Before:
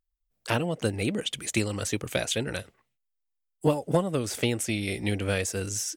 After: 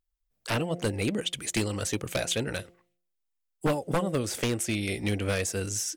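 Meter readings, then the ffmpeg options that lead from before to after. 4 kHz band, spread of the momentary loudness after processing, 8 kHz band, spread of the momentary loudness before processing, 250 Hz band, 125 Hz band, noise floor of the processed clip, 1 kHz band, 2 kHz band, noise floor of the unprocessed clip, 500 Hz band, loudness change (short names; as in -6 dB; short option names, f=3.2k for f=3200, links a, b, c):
-0.5 dB, 3 LU, 0.0 dB, 4 LU, -1.0 dB, -1.0 dB, -80 dBFS, -0.5 dB, -1.0 dB, -80 dBFS, -1.5 dB, -1.0 dB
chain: -af "bandreject=f=175.1:t=h:w=4,bandreject=f=350.2:t=h:w=4,bandreject=f=525.3:t=h:w=4,bandreject=f=700.4:t=h:w=4,aeval=exprs='0.126*(abs(mod(val(0)/0.126+3,4)-2)-1)':c=same"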